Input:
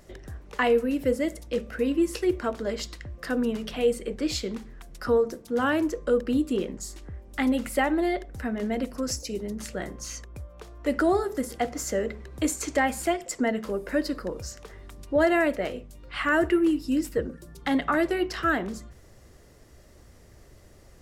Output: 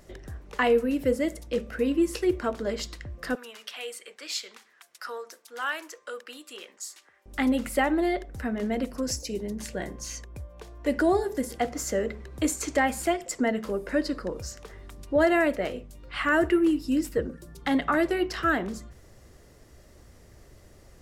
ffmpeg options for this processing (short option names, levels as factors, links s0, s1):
-filter_complex "[0:a]asettb=1/sr,asplit=3[s0][s1][s2];[s0]atrim=end=3.354[s3];[s1]atrim=start=3.35:end=7.26,asetpts=PTS-STARTPTS,afade=t=in:d=0.004:c=qsin,afade=t=out:st=3.906:d=0.004:c=qsin,highpass=1200[s4];[s2]atrim=start=7.256[s5];[s3][s4]acrossfade=d=0.004:c1=hsin:c2=qsin[s6];[s6][s5]acrossfade=d=0.004:c1=qsin:c2=hsin,asettb=1/sr,asplit=3[s7][s8][s9];[s7]atrim=end=9.024[s10];[s8]atrim=start=9.02:end=11.58,asetpts=PTS-STARTPTS,afade=t=in:d=0.004:c=qsin,afade=t=out:st=2.556:d=0.004:c=qsin,asuperstop=centerf=1300:order=4:qfactor=7[s11];[s9]atrim=start=11.576[s12];[s10][s11]acrossfade=d=0.004:c1=hsin:c2=qsin[s13];[s13][s12]acrossfade=d=0.004:c1=qsin:c2=hsin,asettb=1/sr,asplit=3[s14][s15][s16];[s14]atrim=end=13.874[s17];[s15]atrim=start=13.87:end=14.35,asetpts=PTS-STARTPTS,afade=t=in:d=0.004:c=qsin,afade=t=out:st=0.476:d=0.004:c=qsin,lowpass=9500[s18];[s16]atrim=start=14.346[s19];[s17][s18]acrossfade=d=0.004:c1=hsin:c2=qsin[s20];[s20][s19]acrossfade=d=0.004:c1=qsin:c2=hsin"